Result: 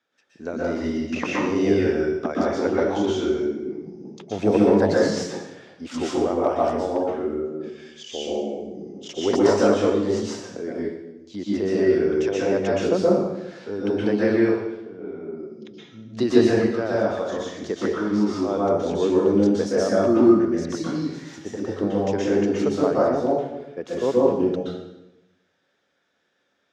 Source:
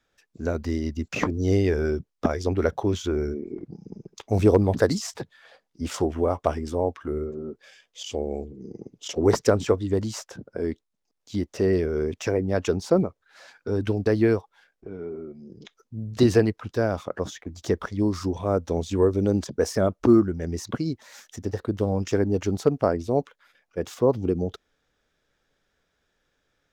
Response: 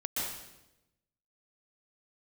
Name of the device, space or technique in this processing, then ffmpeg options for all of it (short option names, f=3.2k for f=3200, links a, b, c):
supermarket ceiling speaker: -filter_complex "[0:a]highpass=210,lowpass=5.8k[a];[1:a]atrim=start_sample=2205[b];[a][b]afir=irnorm=-1:irlink=0,volume=-1dB"